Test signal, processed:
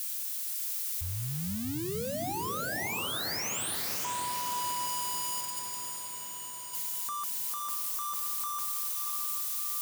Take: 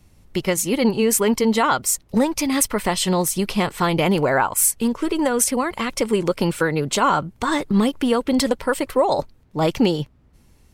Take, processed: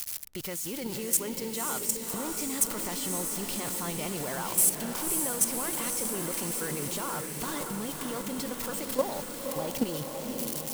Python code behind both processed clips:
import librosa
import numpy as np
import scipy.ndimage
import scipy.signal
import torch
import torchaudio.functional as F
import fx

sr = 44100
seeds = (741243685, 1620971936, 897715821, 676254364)

y = x + 0.5 * 10.0 ** (-14.5 / 20.0) * np.diff(np.sign(x), prepend=np.sign(x[:1]))
y = fx.level_steps(y, sr, step_db=14)
y = fx.echo_diffused(y, sr, ms=554, feedback_pct=69, wet_db=-5.0)
y = y * 10.0 ** (-7.5 / 20.0)